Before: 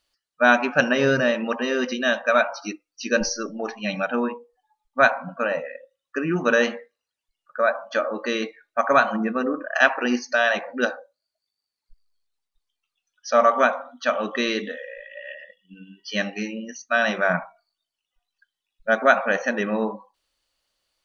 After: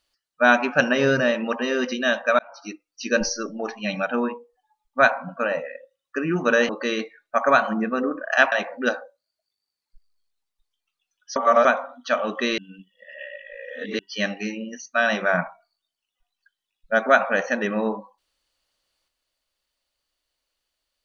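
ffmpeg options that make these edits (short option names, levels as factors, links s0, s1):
-filter_complex "[0:a]asplit=8[s0][s1][s2][s3][s4][s5][s6][s7];[s0]atrim=end=2.39,asetpts=PTS-STARTPTS,afade=t=out:st=2.386:d=0.004:c=hsin[s8];[s1]atrim=start=2.39:end=6.692,asetpts=PTS-STARTPTS,afade=t=in:d=0.7:c=qsin[s9];[s2]atrim=start=8.118:end=9.952[s10];[s3]atrim=start=10.478:end=13.322[s11];[s4]atrim=start=13.318:end=13.612,asetpts=PTS-STARTPTS,areverse[s12];[s5]atrim=start=13.608:end=14.542[s13];[s6]atrim=start=14.538:end=15.952,asetpts=PTS-STARTPTS,areverse[s14];[s7]atrim=start=15.948[s15];[s8][s9]concat=n=2:v=0:a=1[s16];[s16][s10]acrossfade=d=0.004:c1=hsin:c2=hsin[s17];[s17][s11]acrossfade=d=0.004:c1=hsin:c2=hsin[s18];[s18][s12]acrossfade=d=0.004:c1=hsin:c2=hsin[s19];[s19][s13]acrossfade=d=0.004:c1=hsin:c2=hsin[s20];[s20][s14]acrossfade=d=0.004:c1=hsin:c2=hsin[s21];[s21][s15]acrossfade=d=0.004:c1=hsin:c2=hsin"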